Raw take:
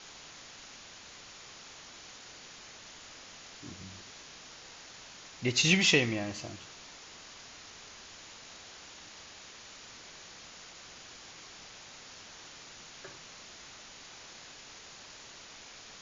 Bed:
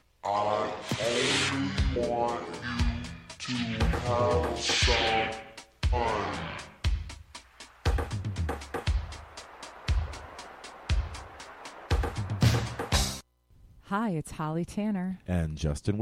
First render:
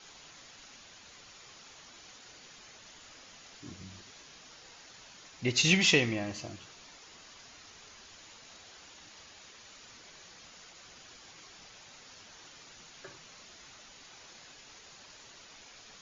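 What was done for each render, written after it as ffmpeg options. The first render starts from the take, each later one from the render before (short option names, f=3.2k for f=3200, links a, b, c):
-af "afftdn=nr=6:nf=-51"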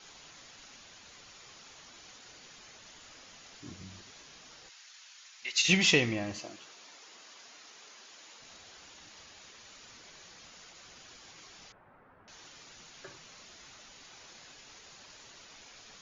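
-filter_complex "[0:a]asplit=3[a][b][c];[a]afade=t=out:st=4.68:d=0.02[d];[b]highpass=1.5k,afade=t=in:st=4.68:d=0.02,afade=t=out:st=5.68:d=0.02[e];[c]afade=t=in:st=5.68:d=0.02[f];[d][e][f]amix=inputs=3:normalize=0,asettb=1/sr,asplit=3[g][h][i];[g]atrim=end=6.394[j];[h]atrim=start=6.39:end=8.4,asetpts=PTS-STARTPTS,afade=t=in:d=0.004:c=qsin,afade=t=out:st=2.006:d=0.004:c=qsin,highpass=290[k];[i]atrim=start=8.396[l];[j][k]acrossfade=d=0.004:c1=hsin:c2=qsin[m];[m][l]acrossfade=d=0.004:c1=qsin:c2=hsin,asettb=1/sr,asplit=3[n][o][p];[n]atrim=end=11.724[q];[o]atrim=start=11.72:end=12.28,asetpts=PTS-STARTPTS,afade=t=in:d=0.004:c=qsin,afade=t=out:st=0.556:d=0.004:c=qsin,lowpass=f=1.5k:w=0.5412,lowpass=f=1.5k:w=1.3066[r];[p]atrim=start=12.276[s];[q][r]acrossfade=d=0.004:c1=hsin:c2=qsin[t];[t][s]acrossfade=d=0.004:c1=qsin:c2=hsin"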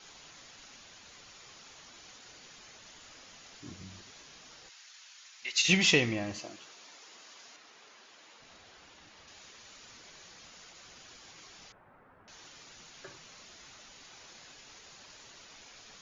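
-filter_complex "[0:a]asettb=1/sr,asplit=3[a][b][c];[a]atrim=end=7.564[d];[b]atrim=start=7.56:end=9.28,asetpts=PTS-STARTPTS,afade=t=in:d=0.004:c=qsin,afade=t=out:st=1.716:d=0.004:c=qsin,lowpass=f=3.1k:p=1[e];[c]atrim=start=9.276[f];[d][e]acrossfade=d=0.004:c1=hsin:c2=qsin[g];[g][f]acrossfade=d=0.004:c1=qsin:c2=hsin"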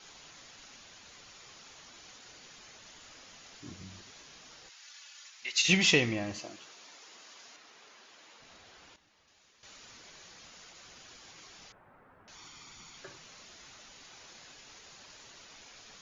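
-filter_complex "[0:a]asettb=1/sr,asplit=3[a][b][c];[a]atrim=end=4.824[d];[b]atrim=start=4.82:end=5.3,asetpts=PTS-STARTPTS,afade=t=in:d=0.004:c=qsin,afade=t=out:st=0.476:d=0.004:c=qsin,aecho=1:1:3.5:0.78,atrim=end_sample=21168[e];[c]atrim=start=5.296[f];[d][e]acrossfade=d=0.004:c1=hsin:c2=qsin[g];[g][f]acrossfade=d=0.004:c1=qsin:c2=hsin,asettb=1/sr,asplit=3[h][i][j];[h]atrim=end=12.354[k];[i]atrim=start=12.35:end=12.98,asetpts=PTS-STARTPTS,afade=t=in:d=0.004:c=qsin,afade=t=out:st=0.626:d=0.004:c=qsin,aecho=1:1:0.9:0.53,atrim=end_sample=27783[l];[j]atrim=start=12.976[m];[k][l]acrossfade=d=0.004:c1=hsin:c2=qsin[n];[n][m]acrossfade=d=0.004:c1=qsin:c2=hsin,asplit=3[o][p][q];[o]atrim=end=8.962[r];[p]atrim=start=8.958:end=9.632,asetpts=PTS-STARTPTS,volume=-12dB[s];[q]atrim=start=9.628[t];[r][s]acrossfade=d=0.004:c1=hsin:c2=hsin[u];[u][t]acrossfade=d=0.004:c1=hsin:c2=hsin"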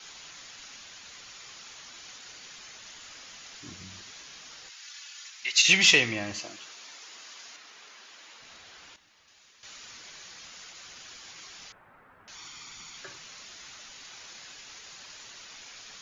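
-filter_complex "[0:a]acrossover=split=350|1100[a][b][c];[a]alimiter=level_in=6.5dB:limit=-24dB:level=0:latency=1,volume=-6.5dB[d];[c]acontrast=76[e];[d][b][e]amix=inputs=3:normalize=0"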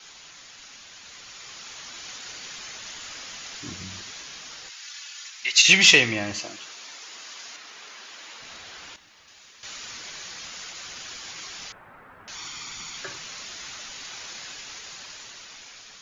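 -af "dynaudnorm=f=440:g=7:m=8dB"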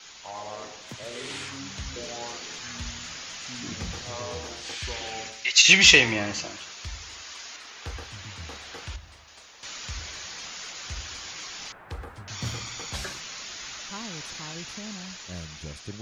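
-filter_complex "[1:a]volume=-10.5dB[a];[0:a][a]amix=inputs=2:normalize=0"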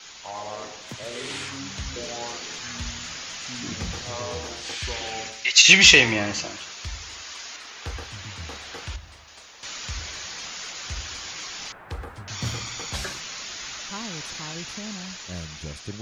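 -af "volume=3dB,alimiter=limit=-1dB:level=0:latency=1"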